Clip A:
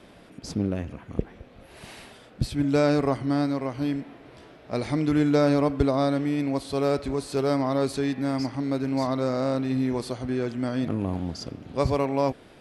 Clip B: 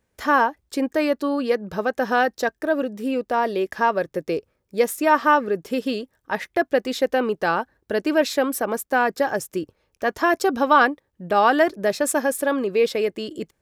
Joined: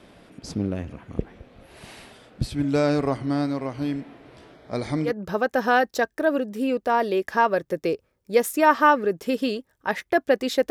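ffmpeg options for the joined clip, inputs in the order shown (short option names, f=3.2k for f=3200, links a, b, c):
-filter_complex "[0:a]asettb=1/sr,asplit=3[a][b][c];[a]atrim=end=4.544[d];[b]atrim=start=4.54:end=5.13,asetpts=PTS-STARTPTS,afade=t=in:d=0.004:c=qsin,afade=t=out:st=0.586:d=0.004:c=qsin,asuperstop=centerf=2700:order=4:qfactor=5.9[e];[c]atrim=start=5.126[f];[d][e]acrossfade=d=0.004:c1=hsin:c2=qsin[g];[g][f]acrossfade=d=0.004:c1=qsin:c2=hsin,apad=whole_dur=10.7,atrim=end=10.7,atrim=end=5.13,asetpts=PTS-STARTPTS[h];[1:a]atrim=start=1.47:end=7.14,asetpts=PTS-STARTPTS[i];[h][i]acrossfade=d=0.1:c1=tri:c2=tri"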